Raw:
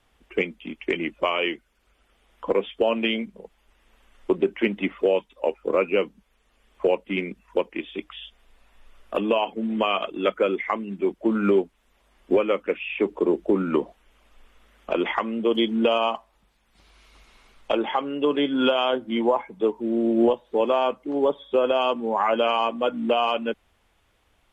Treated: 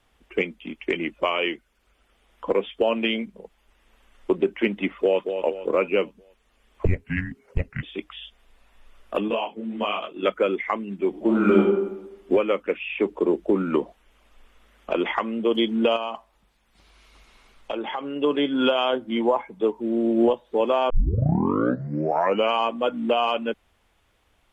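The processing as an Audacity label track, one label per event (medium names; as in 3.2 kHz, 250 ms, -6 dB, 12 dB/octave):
4.890000	5.300000	echo throw 230 ms, feedback 45%, level -7.5 dB
6.850000	7.830000	frequency shift -460 Hz
9.280000	10.230000	detune thickener each way 56 cents
11.090000	11.610000	reverb throw, RT60 0.96 s, DRR -2 dB
15.960000	18.160000	compression 2.5:1, threshold -27 dBFS
20.900000	20.900000	tape start 1.62 s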